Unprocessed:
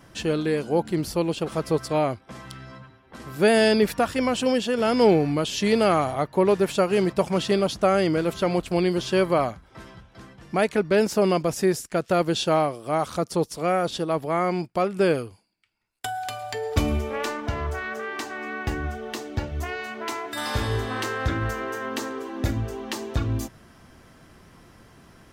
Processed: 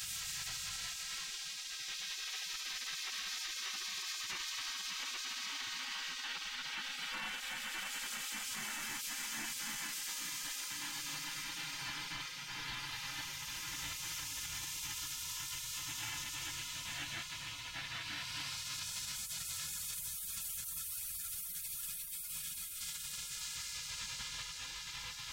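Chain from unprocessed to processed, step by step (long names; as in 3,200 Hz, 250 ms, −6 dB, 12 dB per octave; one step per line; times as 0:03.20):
hum removal 99.39 Hz, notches 5
extreme stretch with random phases 24×, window 0.25 s, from 0:17.34
gate on every frequency bin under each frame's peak −30 dB weak
parametric band 550 Hz −12 dB 1 octave
brickwall limiter −44.5 dBFS, peak gain reduction 10 dB
level +12.5 dB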